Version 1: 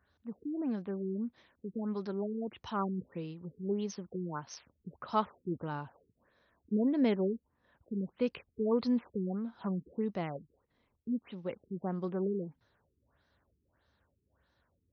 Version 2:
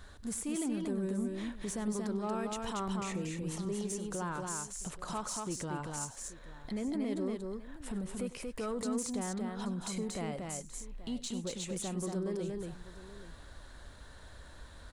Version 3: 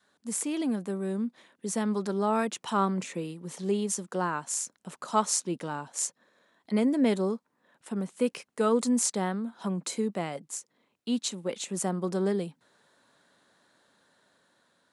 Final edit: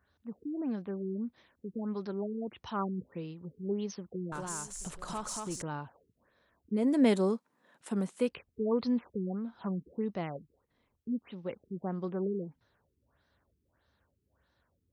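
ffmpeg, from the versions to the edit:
ffmpeg -i take0.wav -i take1.wav -i take2.wav -filter_complex "[0:a]asplit=3[link_01][link_02][link_03];[link_01]atrim=end=4.322[link_04];[1:a]atrim=start=4.318:end=5.622[link_05];[link_02]atrim=start=5.618:end=6.97[link_06];[2:a]atrim=start=6.73:end=8.34[link_07];[link_03]atrim=start=8.1[link_08];[link_04][link_05]acrossfade=duration=0.004:curve1=hsin:curve2=hsin[link_09];[link_09][link_06]acrossfade=duration=0.004:curve1=hsin:curve2=hsin[link_10];[link_10][link_07]acrossfade=duration=0.24:curve1=tri:curve2=tri[link_11];[link_11][link_08]acrossfade=duration=0.24:curve1=tri:curve2=tri" out.wav

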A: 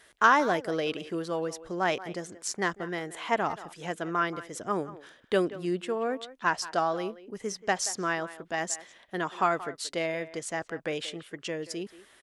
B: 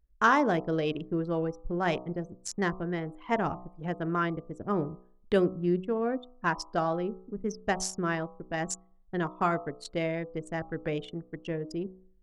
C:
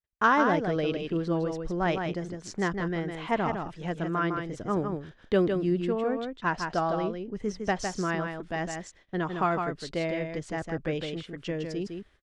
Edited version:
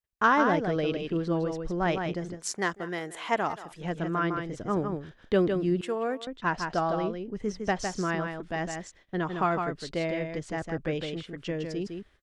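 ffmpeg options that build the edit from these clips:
ffmpeg -i take0.wav -i take1.wav -i take2.wav -filter_complex "[0:a]asplit=2[link_01][link_02];[2:a]asplit=3[link_03][link_04][link_05];[link_03]atrim=end=2.47[link_06];[link_01]atrim=start=2.31:end=3.85[link_07];[link_04]atrim=start=3.69:end=5.812[link_08];[link_02]atrim=start=5.808:end=6.272[link_09];[link_05]atrim=start=6.268[link_10];[link_06][link_07]acrossfade=duration=0.16:curve1=tri:curve2=tri[link_11];[link_11][link_08]acrossfade=duration=0.16:curve1=tri:curve2=tri[link_12];[link_12][link_09]acrossfade=duration=0.004:curve1=hsin:curve2=hsin[link_13];[link_13][link_10]acrossfade=duration=0.004:curve1=hsin:curve2=hsin" out.wav

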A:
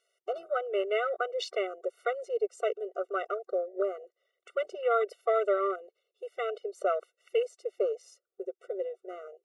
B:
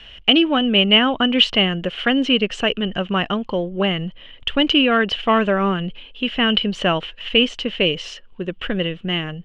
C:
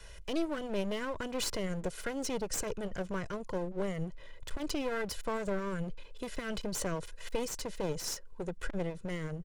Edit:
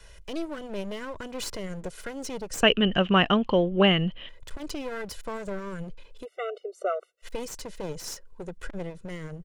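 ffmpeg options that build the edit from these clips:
ffmpeg -i take0.wav -i take1.wav -i take2.wav -filter_complex "[2:a]asplit=3[link_01][link_02][link_03];[link_01]atrim=end=2.632[link_04];[1:a]atrim=start=2.628:end=4.292[link_05];[link_02]atrim=start=4.288:end=6.26[link_06];[0:a]atrim=start=6.22:end=7.26[link_07];[link_03]atrim=start=7.22[link_08];[link_04][link_05]acrossfade=duration=0.004:curve1=hsin:curve2=hsin[link_09];[link_09][link_06]acrossfade=duration=0.004:curve1=hsin:curve2=hsin[link_10];[link_10][link_07]acrossfade=duration=0.04:curve1=tri:curve2=tri[link_11];[link_11][link_08]acrossfade=duration=0.04:curve1=tri:curve2=tri" out.wav

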